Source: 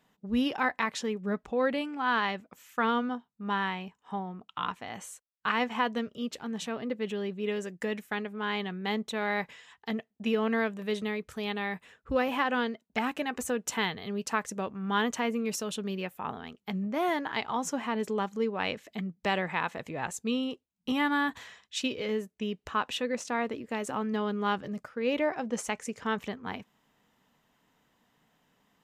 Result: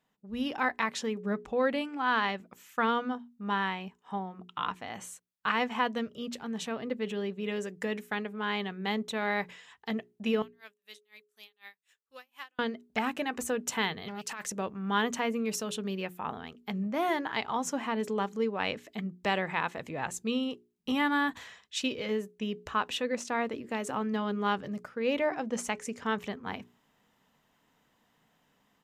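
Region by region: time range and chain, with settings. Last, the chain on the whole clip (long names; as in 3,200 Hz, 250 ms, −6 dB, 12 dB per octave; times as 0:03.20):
0:10.42–0:12.59: first difference + tremolo with a sine in dB 4 Hz, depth 34 dB
0:14.08–0:14.52: tilt shelving filter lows −6 dB, about 1,100 Hz + compressor whose output falls as the input rises −35 dBFS + saturating transformer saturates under 1,800 Hz
whole clip: mains-hum notches 60/120/180/240/300/360/420 Hz; automatic gain control gain up to 8.5 dB; level −8.5 dB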